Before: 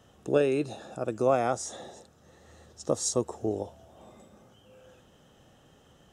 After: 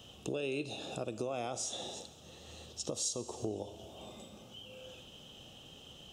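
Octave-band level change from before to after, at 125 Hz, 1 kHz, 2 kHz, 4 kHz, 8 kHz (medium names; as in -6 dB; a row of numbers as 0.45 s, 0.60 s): -8.0 dB, -11.5 dB, -6.0 dB, +2.0 dB, -3.5 dB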